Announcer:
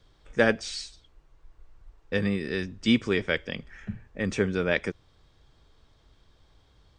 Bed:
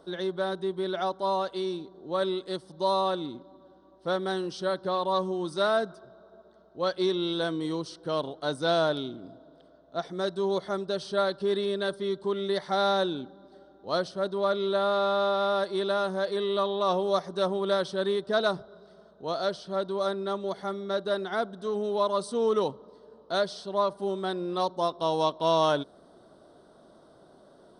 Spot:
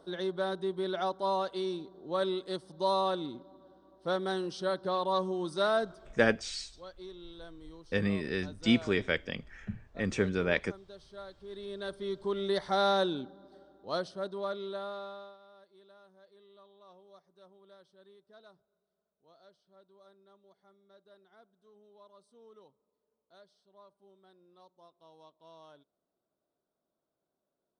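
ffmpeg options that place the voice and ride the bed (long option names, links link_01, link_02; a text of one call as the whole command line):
ffmpeg -i stem1.wav -i stem2.wav -filter_complex "[0:a]adelay=5800,volume=-3.5dB[link_01];[1:a]volume=15dB,afade=type=out:start_time=5.87:duration=0.62:silence=0.141254,afade=type=in:start_time=11.47:duration=1.06:silence=0.125893,afade=type=out:start_time=13.19:duration=2.19:silence=0.0334965[link_02];[link_01][link_02]amix=inputs=2:normalize=0" out.wav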